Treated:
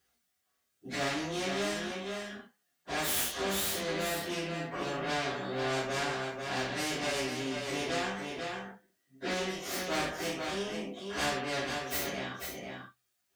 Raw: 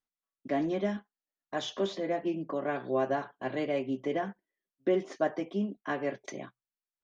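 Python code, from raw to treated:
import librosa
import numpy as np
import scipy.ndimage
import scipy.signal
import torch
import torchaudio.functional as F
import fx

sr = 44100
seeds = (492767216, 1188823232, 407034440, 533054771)

p1 = fx.tracing_dist(x, sr, depth_ms=0.25)
p2 = scipy.signal.sosfilt(scipy.signal.butter(4, 51.0, 'highpass', fs=sr, output='sos'), p1)
p3 = fx.peak_eq(p2, sr, hz=980.0, db=-7.5, octaves=0.29)
p4 = 10.0 ** (-33.5 / 20.0) * np.tanh(p3 / 10.0 ** (-33.5 / 20.0))
p5 = p3 + (p4 * librosa.db_to_amplitude(-10.0))
p6 = fx.stretch_vocoder_free(p5, sr, factor=1.9)
p7 = p6 + 10.0 ** (-9.5 / 20.0) * np.pad(p6, (int(491 * sr / 1000.0), 0))[:len(p6)]
p8 = fx.rev_gated(p7, sr, seeds[0], gate_ms=110, shape='falling', drr_db=-5.5)
p9 = fx.spectral_comp(p8, sr, ratio=2.0)
y = p9 * librosa.db_to_amplitude(-6.5)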